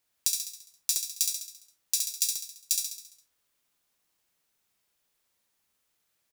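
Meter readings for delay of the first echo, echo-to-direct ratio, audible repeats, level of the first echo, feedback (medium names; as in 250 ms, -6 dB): 68 ms, -2.5 dB, 6, -4.0 dB, 53%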